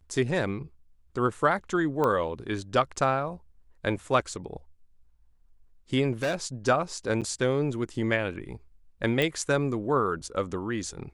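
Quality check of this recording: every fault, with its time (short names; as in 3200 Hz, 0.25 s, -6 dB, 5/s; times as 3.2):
2.04 pop -15 dBFS
6.22–6.45 clipped -23.5 dBFS
7.21–7.22 gap 7.6 ms
9.22 pop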